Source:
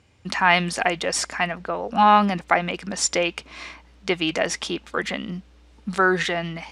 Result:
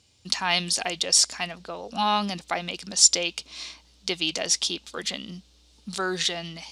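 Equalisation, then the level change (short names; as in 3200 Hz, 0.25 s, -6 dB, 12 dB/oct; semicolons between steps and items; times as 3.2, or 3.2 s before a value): resonant high shelf 2800 Hz +13 dB, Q 1.5; -8.0 dB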